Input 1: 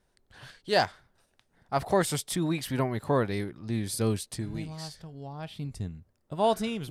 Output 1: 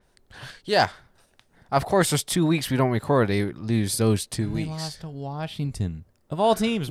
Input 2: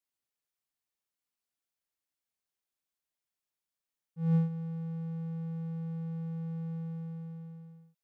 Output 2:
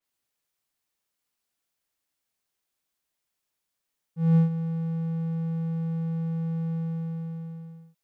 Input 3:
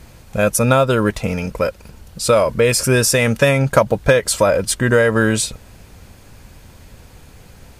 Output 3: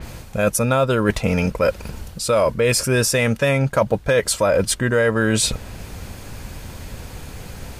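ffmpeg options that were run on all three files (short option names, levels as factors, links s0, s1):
-af "areverse,acompressor=threshold=0.0708:ratio=6,areverse,adynamicequalizer=threshold=0.00447:dfrequency=5100:dqfactor=0.7:tfrequency=5100:tqfactor=0.7:attack=5:release=100:ratio=0.375:range=1.5:mode=cutabove:tftype=highshelf,volume=2.51"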